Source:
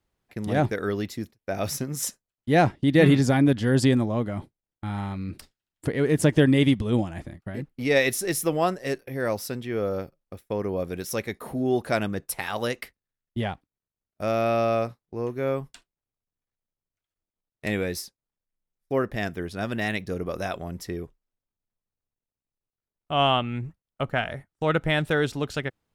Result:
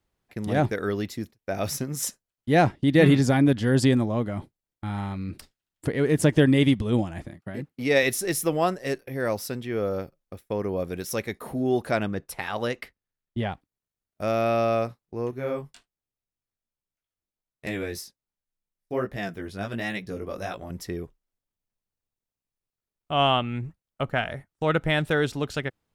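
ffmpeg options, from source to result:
ffmpeg -i in.wav -filter_complex "[0:a]asettb=1/sr,asplit=3[link_01][link_02][link_03];[link_01]atrim=end=7.284[link_04];[link_02]atrim=start=7.28:end=8.03,asetpts=PTS-STARTPTS,afade=type=in:duration=0.004:curve=qsin,afade=type=out:start_time=0.746:duration=0.004:curve=qsin,highpass=110[link_05];[link_03]atrim=start=8.026[link_06];[link_04][link_05]acrossfade=duration=0.004:curve1=hsin:curve2=qsin[link_07];[link_07][link_06]acrossfade=duration=0.004:curve1=qsin:curve2=hsin,asettb=1/sr,asplit=3[link_08][link_09][link_10];[link_08]atrim=end=11.914[link_11];[link_09]atrim=start=11.91:end=13.52,asetpts=PTS-STARTPTS,afade=type=in:duration=0.004:curve=qsin,afade=type=out:start_time=1.606:duration=0.004:curve=qsin,highshelf=frequency=6400:gain=-10.5[link_12];[link_10]atrim=start=13.516[link_13];[link_11][link_12]acrossfade=duration=0.004:curve1=hsin:curve2=qsin[link_14];[link_14][link_13]acrossfade=duration=0.004:curve1=qsin:curve2=hsin,asettb=1/sr,asplit=3[link_15][link_16][link_17];[link_15]atrim=end=15.314[link_18];[link_16]atrim=start=15.31:end=20.7,asetpts=PTS-STARTPTS,afade=type=in:duration=0.004:curve=qsin,afade=type=out:start_time=5.386:duration=0.004:curve=qsin,flanger=delay=15:depth=5.6:speed=1.3[link_19];[link_17]atrim=start=20.696[link_20];[link_18][link_19]acrossfade=duration=0.004:curve1=hsin:curve2=qsin[link_21];[link_21][link_20]acrossfade=duration=0.004:curve1=qsin:curve2=hsin" out.wav

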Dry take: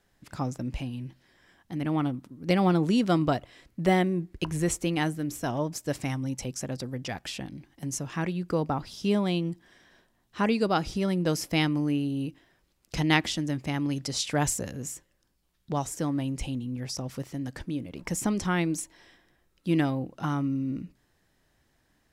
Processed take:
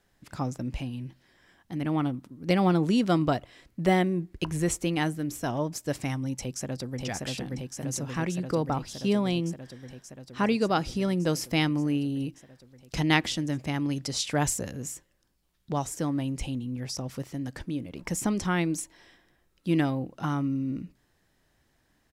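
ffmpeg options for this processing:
ffmpeg -i in.wav -filter_complex "[0:a]asplit=2[link_01][link_02];[link_02]afade=type=in:start_time=6.4:duration=0.01,afade=type=out:start_time=7.03:duration=0.01,aecho=0:1:580|1160|1740|2320|2900|3480|4060|4640|5220|5800|6380|6960:0.794328|0.635463|0.50837|0.406696|0.325357|0.260285|0.208228|0.166583|0.133266|0.106613|0.0852903|0.0682323[link_03];[link_01][link_03]amix=inputs=2:normalize=0" out.wav

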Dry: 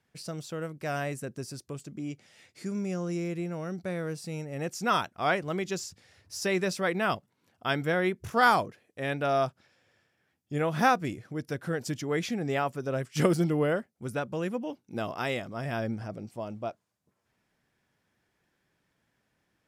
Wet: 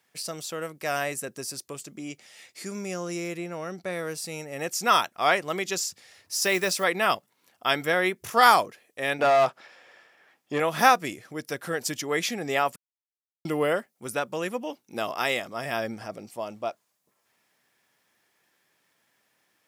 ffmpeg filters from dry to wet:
ffmpeg -i in.wav -filter_complex "[0:a]asettb=1/sr,asplit=3[link_01][link_02][link_03];[link_01]atrim=end=3.374[link_04];[link_02]atrim=start=3.37:end=3.93,asetpts=PTS-STARTPTS,afade=type=in:duration=0.004:curve=qsin,afade=type=out:start_time=0.556:duration=0.004:curve=qsin,highshelf=frequency=6100:gain=-7.5[link_05];[link_03]atrim=start=3.926[link_06];[link_04][link_05]acrossfade=duration=0.004:curve1=hsin:curve2=qsin[link_07];[link_07][link_06]acrossfade=duration=0.004:curve1=qsin:curve2=hsin,asettb=1/sr,asplit=3[link_08][link_09][link_10];[link_08]atrim=end=6.364[link_11];[link_09]atrim=start=6.36:end=6.84,asetpts=PTS-STARTPTS,afade=type=in:duration=0.004:curve=qsin,afade=type=out:start_time=0.476:duration=0.004:curve=qsin,acrusher=bits=7:mode=log:mix=0:aa=0.000001[link_12];[link_10]atrim=start=6.836[link_13];[link_11][link_12]acrossfade=duration=0.004:curve1=hsin:curve2=qsin[link_14];[link_14][link_13]acrossfade=duration=0.004:curve1=qsin:curve2=hsin,asettb=1/sr,asplit=3[link_15][link_16][link_17];[link_15]atrim=end=9.194[link_18];[link_16]atrim=start=9.19:end=10.6,asetpts=PTS-STARTPTS,afade=type=in:duration=0.004:curve=qsin,afade=type=out:start_time=1.406:duration=0.004:curve=qsin,asplit=2[link_19][link_20];[link_20]highpass=frequency=720:poles=1,volume=21dB,asoftclip=type=tanh:threshold=-16dB[link_21];[link_19][link_21]amix=inputs=2:normalize=0,lowpass=frequency=1100:poles=1,volume=-6dB[link_22];[link_17]atrim=start=10.596[link_23];[link_18][link_22]acrossfade=duration=0.004:curve1=hsin:curve2=qsin[link_24];[link_24][link_23]acrossfade=duration=0.004:curve1=qsin:curve2=hsin,asplit=3[link_25][link_26][link_27];[link_25]atrim=end=12.76,asetpts=PTS-STARTPTS,afade=type=out:start_time=12.756:duration=0.004:curve=hsin[link_28];[link_26]atrim=start=12.76:end=13.45,asetpts=PTS-STARTPTS,volume=0[link_29];[link_27]atrim=start=13.45,asetpts=PTS-STARTPTS,afade=type=in:duration=0.004:curve=hsin[link_30];[link_28][link_29][link_30]concat=n=3:v=0:a=1,highpass=frequency=720:poles=1,highshelf=frequency=10000:gain=9,bandreject=frequency=1500:width=15,volume=7.5dB" out.wav

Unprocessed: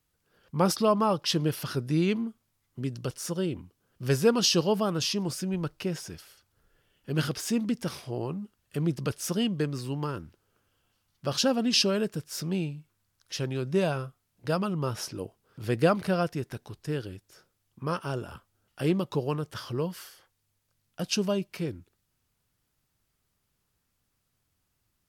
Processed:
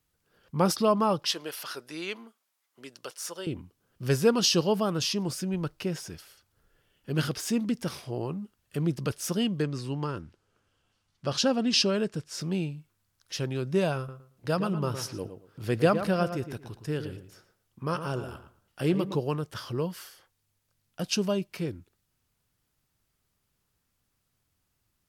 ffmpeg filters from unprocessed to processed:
ffmpeg -i in.wav -filter_complex "[0:a]asettb=1/sr,asplit=3[link_01][link_02][link_03];[link_01]atrim=end=1.314[link_04];[link_02]atrim=start=1.31:end=3.47,asetpts=PTS-STARTPTS,afade=type=in:duration=0.004:curve=qsin,afade=type=out:start_time=2.156:duration=0.004:curve=qsin,highpass=630[link_05];[link_03]atrim=start=3.466[link_06];[link_04][link_05]acrossfade=duration=0.004:curve1=hsin:curve2=qsin[link_07];[link_07][link_06]acrossfade=duration=0.004:curve1=qsin:curve2=hsin,asettb=1/sr,asplit=3[link_08][link_09][link_10];[link_08]atrim=end=9.624[link_11];[link_09]atrim=start=9.62:end=12.41,asetpts=PTS-STARTPTS,afade=type=in:duration=0.004:curve=qsin,afade=type=out:start_time=2.786:duration=0.004:curve=qsin,lowpass=8300[link_12];[link_10]atrim=start=12.406[link_13];[link_11][link_12]acrossfade=duration=0.004:curve1=hsin:curve2=qsin[link_14];[link_14][link_13]acrossfade=duration=0.004:curve1=qsin:curve2=hsin,asettb=1/sr,asplit=3[link_15][link_16][link_17];[link_15]atrim=end=13.974[link_18];[link_16]atrim=start=13.97:end=19.2,asetpts=PTS-STARTPTS,afade=type=in:duration=0.004:curve=qsin,afade=type=out:start_time=5.226:duration=0.004:curve=qsin,asplit=2[link_19][link_20];[link_20]adelay=113,lowpass=frequency=2300:poles=1,volume=-9dB,asplit=2[link_21][link_22];[link_22]adelay=113,lowpass=frequency=2300:poles=1,volume=0.23,asplit=2[link_23][link_24];[link_24]adelay=113,lowpass=frequency=2300:poles=1,volume=0.23[link_25];[link_19][link_21][link_23][link_25]amix=inputs=4:normalize=0,atrim=end_sample=230643[link_26];[link_17]atrim=start=19.196[link_27];[link_18][link_26]acrossfade=duration=0.004:curve1=hsin:curve2=qsin[link_28];[link_28][link_27]acrossfade=duration=0.004:curve1=qsin:curve2=hsin" out.wav

